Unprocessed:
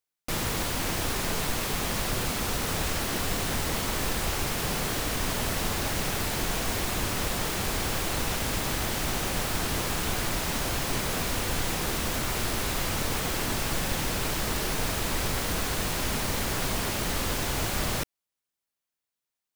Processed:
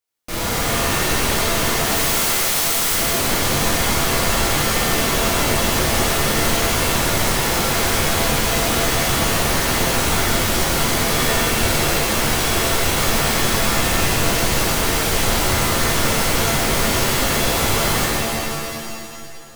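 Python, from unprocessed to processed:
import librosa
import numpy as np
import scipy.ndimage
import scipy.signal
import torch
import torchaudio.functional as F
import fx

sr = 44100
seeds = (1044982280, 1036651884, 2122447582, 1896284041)

y = fx.spec_flatten(x, sr, power=0.12, at=(1.85, 2.91), fade=0.02)
y = fx.rev_shimmer(y, sr, seeds[0], rt60_s=2.2, semitones=7, shimmer_db=-2, drr_db=-7.5)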